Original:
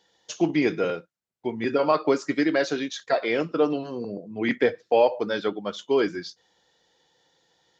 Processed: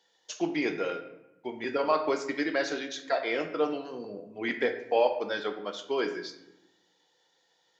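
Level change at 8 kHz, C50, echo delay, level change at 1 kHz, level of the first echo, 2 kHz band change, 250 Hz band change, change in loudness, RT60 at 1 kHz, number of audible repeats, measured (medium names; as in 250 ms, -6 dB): no reading, 9.5 dB, no echo, -3.5 dB, no echo, -3.0 dB, -8.0 dB, -5.5 dB, 0.85 s, no echo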